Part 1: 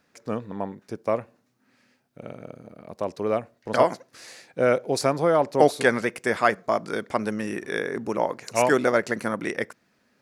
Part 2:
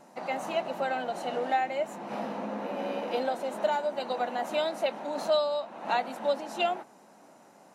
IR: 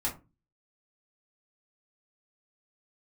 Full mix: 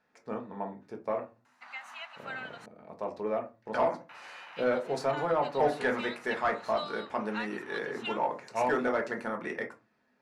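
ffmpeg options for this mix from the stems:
-filter_complex "[0:a]volume=-14.5dB,asplit=2[link_01][link_02];[link_02]volume=-3dB[link_03];[1:a]highpass=frequency=1300:width=0.5412,highpass=frequency=1300:width=1.3066,adelay=1450,volume=-4.5dB,asplit=3[link_04][link_05][link_06];[link_04]atrim=end=2.66,asetpts=PTS-STARTPTS,afade=type=out:start_time=2.656:duration=0.004:curve=hsin[link_07];[link_05]atrim=start=2.66:end=4.09,asetpts=PTS-STARTPTS,volume=0[link_08];[link_06]atrim=start=4.09,asetpts=PTS-STARTPTS,afade=type=in:duration=0.004:curve=hsin[link_09];[link_07][link_08][link_09]concat=n=3:v=0:a=1[link_10];[2:a]atrim=start_sample=2205[link_11];[link_03][link_11]afir=irnorm=-1:irlink=0[link_12];[link_01][link_10][link_12]amix=inputs=3:normalize=0,asplit=2[link_13][link_14];[link_14]highpass=frequency=720:poles=1,volume=13dB,asoftclip=type=tanh:threshold=-15.5dB[link_15];[link_13][link_15]amix=inputs=2:normalize=0,lowpass=frequency=1200:poles=1,volume=-6dB"

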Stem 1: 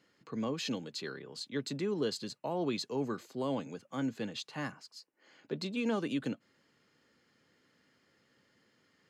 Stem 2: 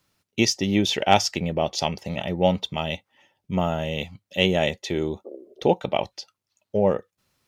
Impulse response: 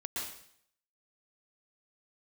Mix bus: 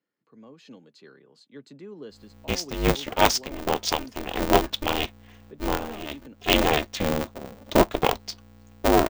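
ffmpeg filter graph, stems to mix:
-filter_complex "[0:a]highpass=140,highshelf=frequency=2600:gain=-9,volume=-14.5dB,asplit=2[link_01][link_02];[1:a]aeval=exprs='val(0)+0.00282*(sin(2*PI*60*n/s)+sin(2*PI*2*60*n/s)/2+sin(2*PI*3*60*n/s)/3+sin(2*PI*4*60*n/s)/4+sin(2*PI*5*60*n/s)/5)':channel_layout=same,aeval=exprs='val(0)*sgn(sin(2*PI*150*n/s))':channel_layout=same,adelay=2100,volume=-4.5dB[link_03];[link_02]apad=whole_len=422295[link_04];[link_03][link_04]sidechaincompress=threshold=-54dB:ratio=12:attack=6.4:release=214[link_05];[link_01][link_05]amix=inputs=2:normalize=0,dynaudnorm=framelen=260:gausssize=5:maxgain=7dB"

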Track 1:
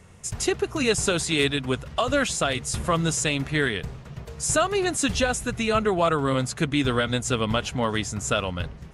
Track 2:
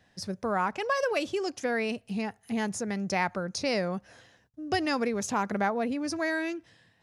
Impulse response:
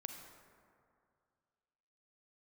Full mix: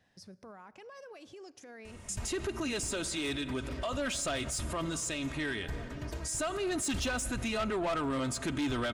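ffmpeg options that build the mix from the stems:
-filter_complex "[0:a]aecho=1:1:3.2:0.52,adelay=1850,volume=2.5dB,asplit=2[link_01][link_02];[link_02]volume=-12dB[link_03];[1:a]acompressor=threshold=-34dB:ratio=4,alimiter=level_in=11.5dB:limit=-24dB:level=0:latency=1:release=161,volume=-11.5dB,volume=-8dB,asplit=3[link_04][link_05][link_06];[link_05]volume=-10.5dB[link_07];[link_06]apad=whole_len=475667[link_08];[link_01][link_08]sidechaincompress=threshold=-53dB:ratio=8:attack=16:release=470[link_09];[2:a]atrim=start_sample=2205[link_10];[link_03][link_07]amix=inputs=2:normalize=0[link_11];[link_11][link_10]afir=irnorm=-1:irlink=0[link_12];[link_09][link_04][link_12]amix=inputs=3:normalize=0,asoftclip=type=tanh:threshold=-17.5dB,alimiter=level_in=4dB:limit=-24dB:level=0:latency=1:release=92,volume=-4dB"

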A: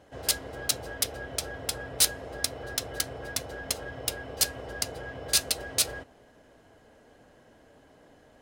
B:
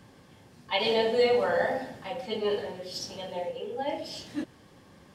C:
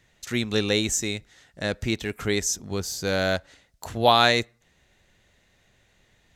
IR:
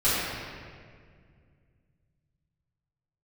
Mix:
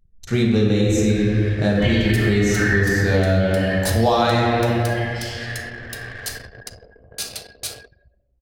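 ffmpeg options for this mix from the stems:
-filter_complex "[0:a]adelay=1850,volume=-7.5dB,asplit=2[link_01][link_02];[link_02]volume=-13dB[link_03];[1:a]acompressor=mode=upward:threshold=-29dB:ratio=2.5,highpass=frequency=1700:width_type=q:width=6.8,adelay=1100,volume=-7.5dB,asplit=2[link_04][link_05];[link_05]volume=-3.5dB[link_06];[2:a]tiltshelf=frequency=800:gain=6.5,volume=1.5dB,asplit=2[link_07][link_08];[link_08]volume=-7.5dB[link_09];[3:a]atrim=start_sample=2205[link_10];[link_03][link_06][link_09]amix=inputs=3:normalize=0[link_11];[link_11][link_10]afir=irnorm=-1:irlink=0[link_12];[link_01][link_04][link_07][link_12]amix=inputs=4:normalize=0,anlmdn=3.98,acompressor=threshold=-14dB:ratio=6"

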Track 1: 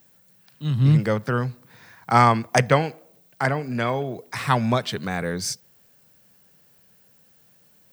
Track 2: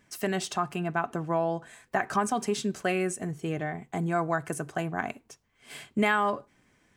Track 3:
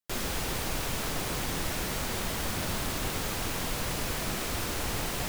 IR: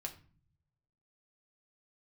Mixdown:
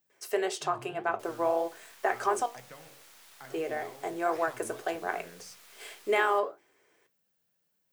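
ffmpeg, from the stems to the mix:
-filter_complex "[0:a]bandreject=frequency=46.19:width_type=h:width=4,bandreject=frequency=92.38:width_type=h:width=4,bandreject=frequency=138.57:width_type=h:width=4,bandreject=frequency=184.76:width_type=h:width=4,bandreject=frequency=230.95:width_type=h:width=4,bandreject=frequency=277.14:width_type=h:width=4,bandreject=frequency=323.33:width_type=h:width=4,bandreject=frequency=369.52:width_type=h:width=4,bandreject=frequency=415.71:width_type=h:width=4,bandreject=frequency=461.9:width_type=h:width=4,bandreject=frequency=508.09:width_type=h:width=4,bandreject=frequency=554.28:width_type=h:width=4,bandreject=frequency=600.47:width_type=h:width=4,bandreject=frequency=646.66:width_type=h:width=4,bandreject=frequency=692.85:width_type=h:width=4,bandreject=frequency=739.04:width_type=h:width=4,bandreject=frequency=785.23:width_type=h:width=4,bandreject=frequency=831.42:width_type=h:width=4,bandreject=frequency=877.61:width_type=h:width=4,bandreject=frequency=923.8:width_type=h:width=4,bandreject=frequency=969.99:width_type=h:width=4,bandreject=frequency=1016.18:width_type=h:width=4,bandreject=frequency=1062.37:width_type=h:width=4,bandreject=frequency=1108.56:width_type=h:width=4,bandreject=frequency=1154.75:width_type=h:width=4,bandreject=frequency=1200.94:width_type=h:width=4,bandreject=frequency=1247.13:width_type=h:width=4,bandreject=frequency=1293.32:width_type=h:width=4,bandreject=frequency=1339.51:width_type=h:width=4,bandreject=frequency=1385.7:width_type=h:width=4,acompressor=threshold=-26dB:ratio=6,volume=-14.5dB[link_01];[1:a]lowshelf=frequency=280:width_type=q:width=3:gain=-12.5,bandreject=frequency=50:width_type=h:width=6,bandreject=frequency=100:width_type=h:width=6,bandreject=frequency=150:width_type=h:width=6,bandreject=frequency=200:width_type=h:width=6,bandreject=frequency=250:width_type=h:width=6,bandreject=frequency=300:width_type=h:width=6,bandreject=frequency=350:width_type=h:width=6,adelay=100,volume=2dB,asplit=3[link_02][link_03][link_04];[link_02]atrim=end=2.46,asetpts=PTS-STARTPTS,afade=type=out:start_time=2.456:duration=0.004:curve=hsin[link_05];[link_03]atrim=start=2.46:end=3.5,asetpts=PTS-STARTPTS,volume=0[link_06];[link_04]atrim=start=3.5,asetpts=PTS-STARTPTS,afade=type=in:duration=0.004:curve=hsin[link_07];[link_05][link_06][link_07]concat=n=3:v=0:a=1[link_08];[2:a]highpass=1100,acrusher=bits=4:dc=4:mix=0:aa=0.000001,adelay=1100,volume=-11.5dB[link_09];[link_01][link_08][link_09]amix=inputs=3:normalize=0,flanger=delay=10:depth=8.2:regen=-65:speed=1.8:shape=sinusoidal,lowshelf=frequency=160:gain=-7.5"

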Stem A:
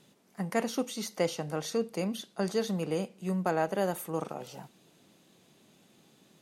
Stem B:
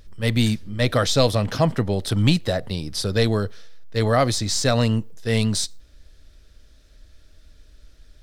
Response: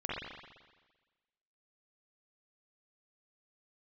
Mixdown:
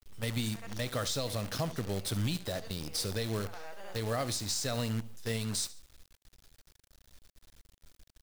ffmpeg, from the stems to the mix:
-filter_complex "[0:a]bandpass=frequency=2900:width_type=q:width=0.52:csg=0,volume=-6dB,asplit=2[link_01][link_02];[link_02]volume=-5.5dB[link_03];[1:a]aemphasis=mode=production:type=cd,volume=-9.5dB,asplit=3[link_04][link_05][link_06];[link_05]volume=-16dB[link_07];[link_06]apad=whole_len=282717[link_08];[link_01][link_08]sidechaincompress=threshold=-36dB:ratio=8:attack=50:release=1490[link_09];[link_03][link_07]amix=inputs=2:normalize=0,aecho=0:1:71|142|213|284:1|0.25|0.0625|0.0156[link_10];[link_09][link_04][link_10]amix=inputs=3:normalize=0,acrusher=bits=7:dc=4:mix=0:aa=0.000001,alimiter=limit=-23dB:level=0:latency=1:release=231"

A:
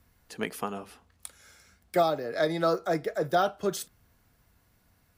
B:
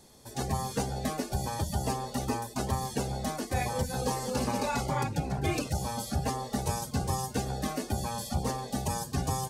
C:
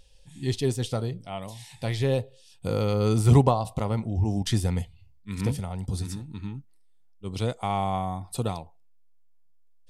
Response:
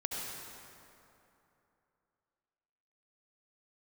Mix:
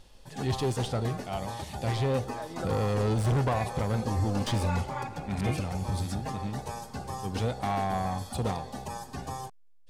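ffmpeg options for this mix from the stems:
-filter_complex "[0:a]alimiter=limit=-24dB:level=0:latency=1:release=457,volume=-1dB[link_01];[1:a]lowshelf=frequency=460:gain=-9,volume=-2.5dB,asplit=2[link_02][link_03];[link_03]volume=-11.5dB[link_04];[2:a]highshelf=frequency=2300:gain=6.5,asoftclip=type=tanh:threshold=-24dB,volume=1dB,asplit=2[link_05][link_06];[link_06]apad=whole_len=228377[link_07];[link_01][link_07]sidechaincompress=threshold=-40dB:ratio=8:attack=16:release=457[link_08];[3:a]atrim=start_sample=2205[link_09];[link_04][link_09]afir=irnorm=-1:irlink=0[link_10];[link_08][link_02][link_05][link_10]amix=inputs=4:normalize=0,highshelf=frequency=4000:gain=-12"

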